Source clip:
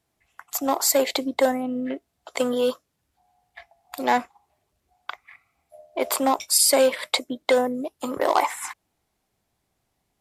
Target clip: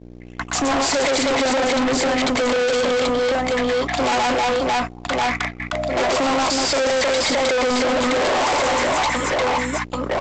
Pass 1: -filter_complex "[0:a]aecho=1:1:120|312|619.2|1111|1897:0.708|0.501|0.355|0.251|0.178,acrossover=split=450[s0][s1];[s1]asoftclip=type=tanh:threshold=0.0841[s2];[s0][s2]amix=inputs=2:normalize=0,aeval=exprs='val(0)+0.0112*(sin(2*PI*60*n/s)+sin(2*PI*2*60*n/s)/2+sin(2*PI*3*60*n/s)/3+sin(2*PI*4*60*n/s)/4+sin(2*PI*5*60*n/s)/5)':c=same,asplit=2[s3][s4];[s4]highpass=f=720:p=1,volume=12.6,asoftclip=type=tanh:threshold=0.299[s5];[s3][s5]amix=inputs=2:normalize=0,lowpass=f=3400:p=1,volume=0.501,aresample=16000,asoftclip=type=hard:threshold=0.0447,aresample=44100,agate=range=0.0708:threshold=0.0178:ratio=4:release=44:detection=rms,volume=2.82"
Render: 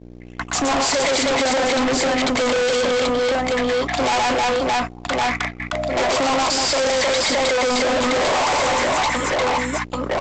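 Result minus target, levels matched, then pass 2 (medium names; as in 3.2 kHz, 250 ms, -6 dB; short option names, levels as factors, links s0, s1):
saturation: distortion -5 dB
-filter_complex "[0:a]aecho=1:1:120|312|619.2|1111|1897:0.708|0.501|0.355|0.251|0.178,acrossover=split=450[s0][s1];[s1]asoftclip=type=tanh:threshold=0.0282[s2];[s0][s2]amix=inputs=2:normalize=0,aeval=exprs='val(0)+0.0112*(sin(2*PI*60*n/s)+sin(2*PI*2*60*n/s)/2+sin(2*PI*3*60*n/s)/3+sin(2*PI*4*60*n/s)/4+sin(2*PI*5*60*n/s)/5)':c=same,asplit=2[s3][s4];[s4]highpass=f=720:p=1,volume=12.6,asoftclip=type=tanh:threshold=0.299[s5];[s3][s5]amix=inputs=2:normalize=0,lowpass=f=3400:p=1,volume=0.501,aresample=16000,asoftclip=type=hard:threshold=0.0447,aresample=44100,agate=range=0.0708:threshold=0.0178:ratio=4:release=44:detection=rms,volume=2.82"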